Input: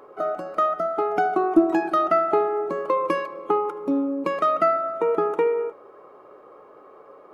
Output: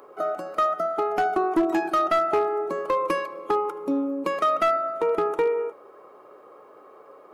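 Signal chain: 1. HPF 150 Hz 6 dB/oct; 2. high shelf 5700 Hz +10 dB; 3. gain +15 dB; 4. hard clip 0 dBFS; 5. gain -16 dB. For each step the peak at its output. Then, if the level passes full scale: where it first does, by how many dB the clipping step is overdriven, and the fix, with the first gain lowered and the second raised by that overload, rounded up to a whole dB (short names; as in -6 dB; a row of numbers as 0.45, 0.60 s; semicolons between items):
-6.5, -6.5, +8.5, 0.0, -16.0 dBFS; step 3, 8.5 dB; step 3 +6 dB, step 5 -7 dB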